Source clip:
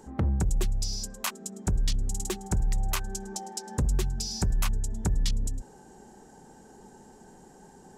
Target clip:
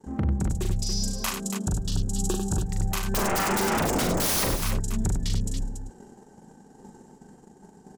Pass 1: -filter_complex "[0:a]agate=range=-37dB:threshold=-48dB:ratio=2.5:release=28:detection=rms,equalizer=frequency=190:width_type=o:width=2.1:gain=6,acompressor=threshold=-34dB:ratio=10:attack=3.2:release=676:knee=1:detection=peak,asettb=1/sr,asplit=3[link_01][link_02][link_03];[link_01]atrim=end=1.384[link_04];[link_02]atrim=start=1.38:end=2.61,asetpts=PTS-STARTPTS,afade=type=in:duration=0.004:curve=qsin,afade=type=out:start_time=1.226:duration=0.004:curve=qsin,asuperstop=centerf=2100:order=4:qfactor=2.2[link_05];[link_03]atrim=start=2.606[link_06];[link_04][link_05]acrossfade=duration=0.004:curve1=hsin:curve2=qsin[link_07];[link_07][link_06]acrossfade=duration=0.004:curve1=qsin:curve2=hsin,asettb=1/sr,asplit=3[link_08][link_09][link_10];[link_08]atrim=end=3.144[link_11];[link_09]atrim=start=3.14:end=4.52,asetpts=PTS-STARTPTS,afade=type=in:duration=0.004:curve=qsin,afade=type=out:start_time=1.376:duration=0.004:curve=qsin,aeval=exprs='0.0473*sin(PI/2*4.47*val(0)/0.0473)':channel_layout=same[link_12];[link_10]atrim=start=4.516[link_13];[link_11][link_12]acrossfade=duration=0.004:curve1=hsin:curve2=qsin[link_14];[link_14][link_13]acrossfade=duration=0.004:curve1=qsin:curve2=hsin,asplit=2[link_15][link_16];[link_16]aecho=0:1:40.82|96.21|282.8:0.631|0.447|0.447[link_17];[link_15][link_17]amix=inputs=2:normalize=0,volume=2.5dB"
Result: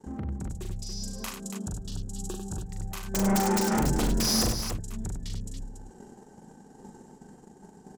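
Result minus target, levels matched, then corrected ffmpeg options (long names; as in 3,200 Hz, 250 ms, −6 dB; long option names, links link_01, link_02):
downward compressor: peak gain reduction +9 dB
-filter_complex "[0:a]agate=range=-37dB:threshold=-48dB:ratio=2.5:release=28:detection=rms,equalizer=frequency=190:width_type=o:width=2.1:gain=6,acompressor=threshold=-24dB:ratio=10:attack=3.2:release=676:knee=1:detection=peak,asettb=1/sr,asplit=3[link_01][link_02][link_03];[link_01]atrim=end=1.384[link_04];[link_02]atrim=start=1.38:end=2.61,asetpts=PTS-STARTPTS,afade=type=in:duration=0.004:curve=qsin,afade=type=out:start_time=1.226:duration=0.004:curve=qsin,asuperstop=centerf=2100:order=4:qfactor=2.2[link_05];[link_03]atrim=start=2.606[link_06];[link_04][link_05]acrossfade=duration=0.004:curve1=hsin:curve2=qsin[link_07];[link_07][link_06]acrossfade=duration=0.004:curve1=qsin:curve2=hsin,asettb=1/sr,asplit=3[link_08][link_09][link_10];[link_08]atrim=end=3.144[link_11];[link_09]atrim=start=3.14:end=4.52,asetpts=PTS-STARTPTS,afade=type=in:duration=0.004:curve=qsin,afade=type=out:start_time=1.376:duration=0.004:curve=qsin,aeval=exprs='0.0473*sin(PI/2*4.47*val(0)/0.0473)':channel_layout=same[link_12];[link_10]atrim=start=4.516[link_13];[link_11][link_12]acrossfade=duration=0.004:curve1=hsin:curve2=qsin[link_14];[link_14][link_13]acrossfade=duration=0.004:curve1=qsin:curve2=hsin,asplit=2[link_15][link_16];[link_16]aecho=0:1:40.82|96.21|282.8:0.631|0.447|0.447[link_17];[link_15][link_17]amix=inputs=2:normalize=0,volume=2.5dB"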